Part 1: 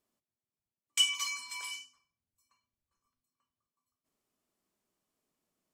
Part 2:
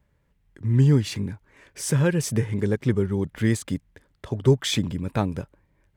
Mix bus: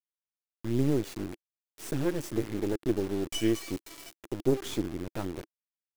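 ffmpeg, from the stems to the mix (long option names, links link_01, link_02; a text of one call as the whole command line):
ffmpeg -i stem1.wav -i stem2.wav -filter_complex "[0:a]adelay=2350,volume=-5dB[link_01];[1:a]bandreject=frequency=396.8:width_type=h:width=4,bandreject=frequency=793.6:width_type=h:width=4,volume=-9.5dB[link_02];[link_01][link_02]amix=inputs=2:normalize=0,acrusher=bits=4:dc=4:mix=0:aa=0.000001,equalizer=frequency=330:width=2.1:gain=13.5" out.wav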